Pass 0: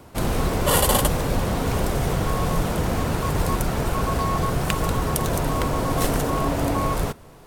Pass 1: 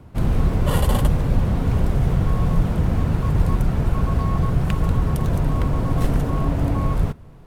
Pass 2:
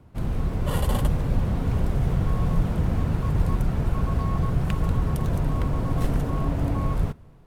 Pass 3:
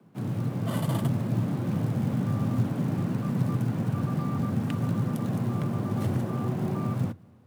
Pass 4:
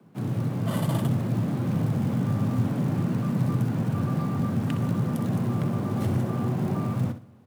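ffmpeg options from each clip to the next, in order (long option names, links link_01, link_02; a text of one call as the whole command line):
ffmpeg -i in.wav -af "bass=frequency=250:gain=12,treble=frequency=4000:gain=-8,volume=-5.5dB" out.wav
ffmpeg -i in.wav -af "dynaudnorm=framelen=470:gausssize=3:maxgain=5dB,volume=-7.5dB" out.wav
ffmpeg -i in.wav -af "acrusher=bits=8:mode=log:mix=0:aa=0.000001,afreqshift=87,volume=-5dB" out.wav
ffmpeg -i in.wav -filter_complex "[0:a]asplit=2[link_01][link_02];[link_02]asoftclip=type=hard:threshold=-25.5dB,volume=-7.5dB[link_03];[link_01][link_03]amix=inputs=2:normalize=0,aecho=1:1:63|126|189:0.282|0.0676|0.0162,volume=-1dB" out.wav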